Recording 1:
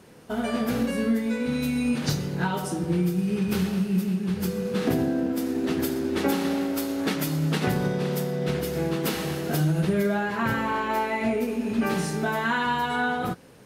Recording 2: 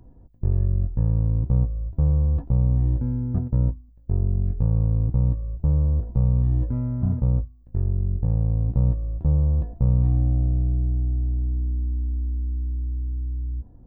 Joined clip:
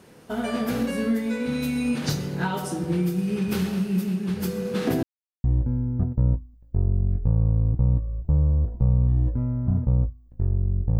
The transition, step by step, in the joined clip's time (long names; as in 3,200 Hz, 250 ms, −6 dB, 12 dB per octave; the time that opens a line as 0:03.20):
recording 1
0:05.03–0:05.44: silence
0:05.44: continue with recording 2 from 0:02.79